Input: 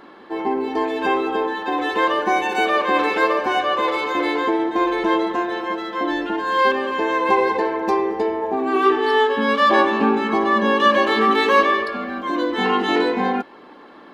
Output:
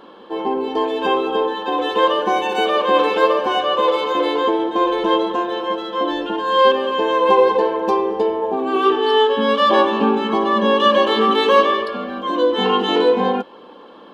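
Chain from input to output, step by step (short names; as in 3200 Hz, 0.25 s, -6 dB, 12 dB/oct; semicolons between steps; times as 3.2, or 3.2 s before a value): thirty-one-band EQ 200 Hz +5 dB, 500 Hz +11 dB, 1000 Hz +5 dB, 2000 Hz -9 dB, 3150 Hz +10 dB; gain -1.5 dB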